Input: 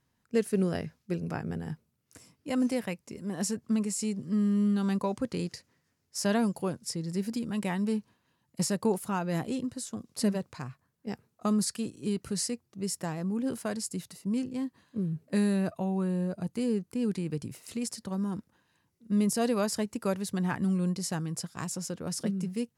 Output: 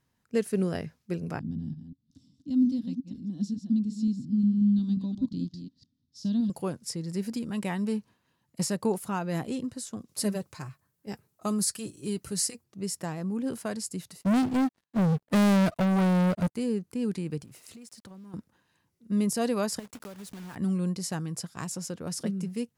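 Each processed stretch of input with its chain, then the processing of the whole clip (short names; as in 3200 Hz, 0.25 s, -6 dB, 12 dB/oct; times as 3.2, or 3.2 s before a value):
1.39–6.5 reverse delay 0.179 s, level -8 dB + EQ curve 190 Hz 0 dB, 270 Hz +6 dB, 400 Hz -20 dB, 2300 Hz -29 dB, 3600 Hz -3 dB, 5600 Hz -12 dB, 9400 Hz -27 dB
10.08–12.64 high shelf 7200 Hz +10.5 dB + notch comb 240 Hz
14.21–16.55 sample leveller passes 5 + upward expander 2.5:1, over -33 dBFS
17.41–18.34 compressor 16:1, threshold -44 dBFS + sample gate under -59.5 dBFS
19.79–20.56 block floating point 3-bit + compressor 10:1, threshold -39 dBFS
whole clip: dry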